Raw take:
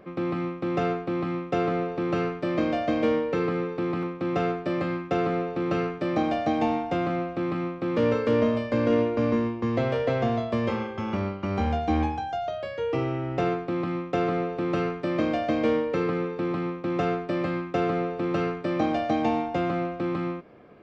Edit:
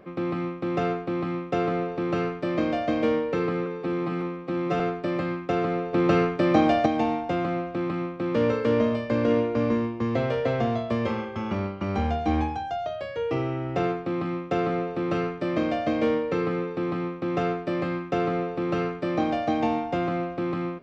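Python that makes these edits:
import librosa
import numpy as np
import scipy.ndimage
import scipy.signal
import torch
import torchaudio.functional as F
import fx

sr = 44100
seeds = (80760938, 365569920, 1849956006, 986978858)

y = fx.edit(x, sr, fx.stretch_span(start_s=3.66, length_s=0.76, factor=1.5),
    fx.clip_gain(start_s=5.55, length_s=0.93, db=5.5), tone=tone)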